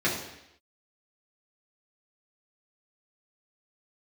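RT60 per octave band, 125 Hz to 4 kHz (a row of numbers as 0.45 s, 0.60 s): 0.75 s, 0.80 s, 0.80 s, 0.80 s, 0.90 s, 0.85 s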